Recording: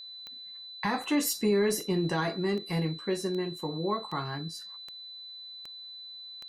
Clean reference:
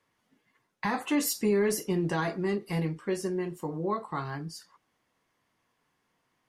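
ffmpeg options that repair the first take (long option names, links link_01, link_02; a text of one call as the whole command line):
ffmpeg -i in.wav -af "adeclick=threshold=4,bandreject=frequency=4000:width=30" out.wav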